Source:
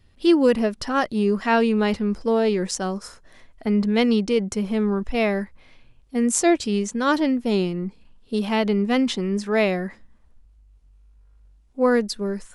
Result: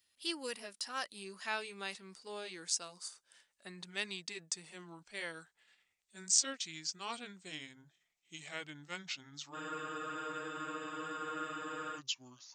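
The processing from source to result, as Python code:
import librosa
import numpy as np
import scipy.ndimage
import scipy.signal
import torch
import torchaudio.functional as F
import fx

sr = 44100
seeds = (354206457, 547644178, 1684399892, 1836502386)

y = fx.pitch_glide(x, sr, semitones=-8.0, runs='starting unshifted')
y = np.diff(y, prepend=0.0)
y = fx.spec_freeze(y, sr, seeds[0], at_s=9.56, hold_s=2.41)
y = y * 10.0 ** (-1.0 / 20.0)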